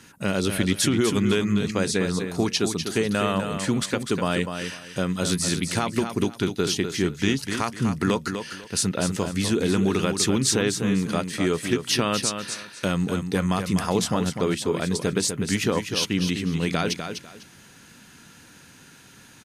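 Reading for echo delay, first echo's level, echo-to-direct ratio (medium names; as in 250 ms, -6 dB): 249 ms, -7.5 dB, -7.5 dB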